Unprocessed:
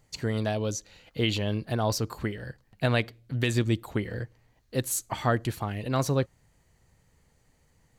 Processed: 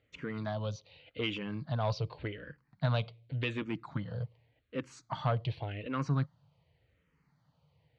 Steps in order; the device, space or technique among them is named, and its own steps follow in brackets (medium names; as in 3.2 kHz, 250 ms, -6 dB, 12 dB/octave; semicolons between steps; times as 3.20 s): barber-pole phaser into a guitar amplifier (barber-pole phaser -0.87 Hz; saturation -21 dBFS, distortion -17 dB; cabinet simulation 100–3800 Hz, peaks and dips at 150 Hz +6 dB, 220 Hz -7 dB, 370 Hz -9 dB, 780 Hz -4 dB, 1.8 kHz -6 dB)